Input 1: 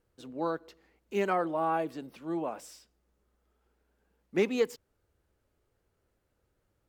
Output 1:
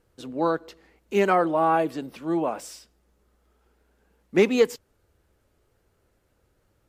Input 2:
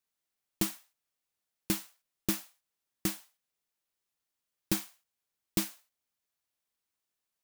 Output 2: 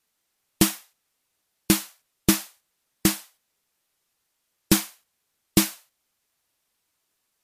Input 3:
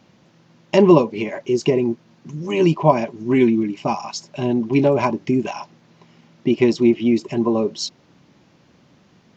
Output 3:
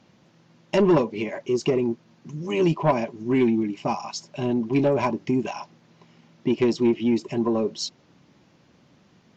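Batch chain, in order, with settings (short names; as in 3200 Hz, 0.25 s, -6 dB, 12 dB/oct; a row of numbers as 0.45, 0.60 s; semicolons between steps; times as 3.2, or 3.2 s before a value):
soft clip -8 dBFS; MP3 64 kbps 32000 Hz; match loudness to -24 LUFS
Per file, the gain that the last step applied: +9.0, +12.5, -3.0 dB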